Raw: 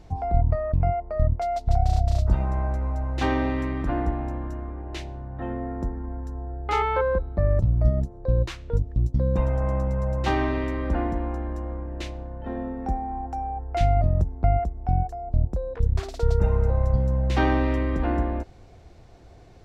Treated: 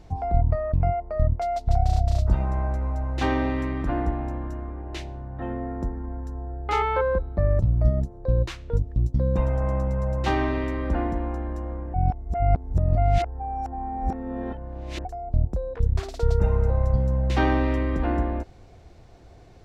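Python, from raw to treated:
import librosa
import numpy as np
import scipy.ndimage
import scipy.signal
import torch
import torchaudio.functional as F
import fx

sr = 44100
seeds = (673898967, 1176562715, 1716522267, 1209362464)

y = fx.edit(x, sr, fx.reverse_span(start_s=11.94, length_s=3.11), tone=tone)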